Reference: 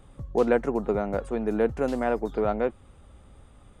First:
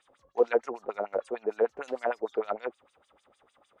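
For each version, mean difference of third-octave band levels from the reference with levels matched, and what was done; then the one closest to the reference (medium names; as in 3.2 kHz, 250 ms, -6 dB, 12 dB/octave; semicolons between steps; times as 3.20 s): 7.0 dB: bass shelf 330 Hz -9.5 dB; LFO band-pass sine 6.6 Hz 430–6300 Hz; trim +5 dB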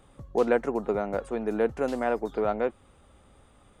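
1.5 dB: bass shelf 180 Hz -9 dB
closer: second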